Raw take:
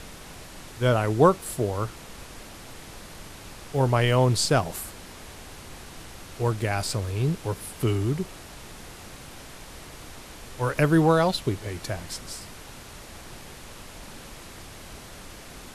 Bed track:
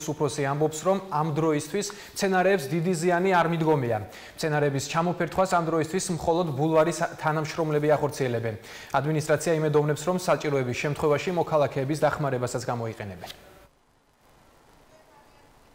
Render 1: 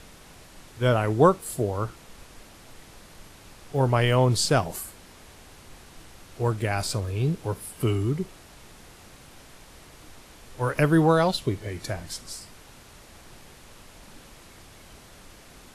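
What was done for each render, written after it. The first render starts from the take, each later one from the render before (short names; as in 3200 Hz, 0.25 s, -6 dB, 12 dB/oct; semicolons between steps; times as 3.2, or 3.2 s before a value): noise print and reduce 6 dB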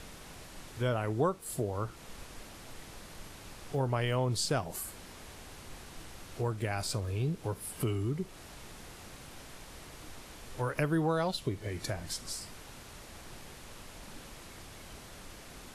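compressor 2:1, threshold -35 dBFS, peak gain reduction 12.5 dB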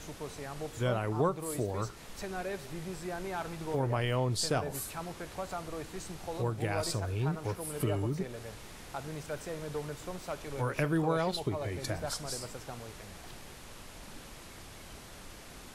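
add bed track -16 dB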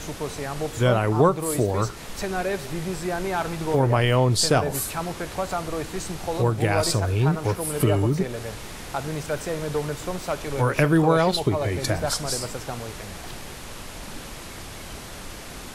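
gain +11 dB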